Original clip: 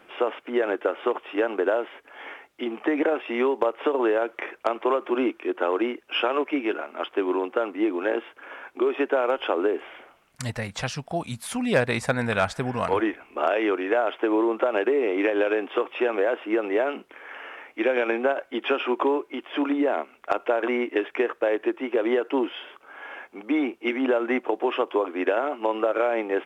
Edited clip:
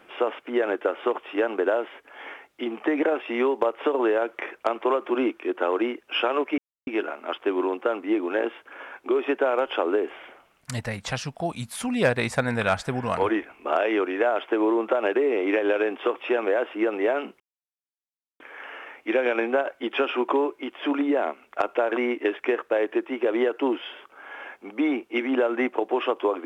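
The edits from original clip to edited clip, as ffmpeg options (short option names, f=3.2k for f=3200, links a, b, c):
-filter_complex "[0:a]asplit=3[a][b][c];[a]atrim=end=6.58,asetpts=PTS-STARTPTS,afade=t=out:st=6.576:d=0.004:c=hsin,apad=pad_dur=0.29[d];[b]atrim=start=6.58:end=17.11,asetpts=PTS-STARTPTS,afade=t=in:d=0.004:c=hsin,afade=t=out:st=10.526:d=0.004:c=hsin,apad=pad_dur=1[e];[c]atrim=start=17.11,asetpts=PTS-STARTPTS,afade=t=in:d=0.004:c=hsin[f];[d][e][f]concat=n=3:v=0:a=1"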